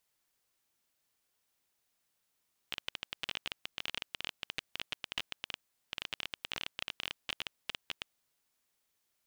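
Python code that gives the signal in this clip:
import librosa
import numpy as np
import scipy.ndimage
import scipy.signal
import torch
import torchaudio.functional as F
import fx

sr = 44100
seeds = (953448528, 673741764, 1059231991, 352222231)

y = fx.geiger_clicks(sr, seeds[0], length_s=5.36, per_s=18.0, level_db=-18.5)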